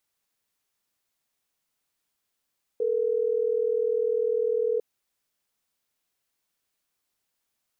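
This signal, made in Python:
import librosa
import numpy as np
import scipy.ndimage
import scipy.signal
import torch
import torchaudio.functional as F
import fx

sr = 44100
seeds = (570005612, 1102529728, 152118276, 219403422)

y = fx.call_progress(sr, length_s=3.12, kind='ringback tone', level_db=-25.0)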